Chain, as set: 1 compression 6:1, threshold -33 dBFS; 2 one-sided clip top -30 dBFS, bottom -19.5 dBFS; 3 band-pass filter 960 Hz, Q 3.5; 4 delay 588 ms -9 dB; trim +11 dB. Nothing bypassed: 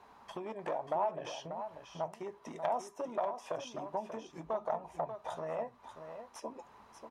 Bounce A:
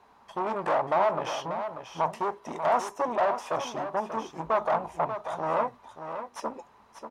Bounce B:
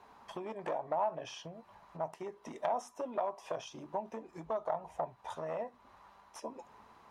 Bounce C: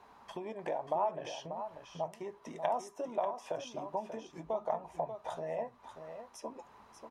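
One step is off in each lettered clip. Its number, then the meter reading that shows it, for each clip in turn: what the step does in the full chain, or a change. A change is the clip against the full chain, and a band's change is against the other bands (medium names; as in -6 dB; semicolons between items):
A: 1, mean gain reduction 10.5 dB; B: 4, momentary loudness spread change +5 LU; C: 2, distortion -13 dB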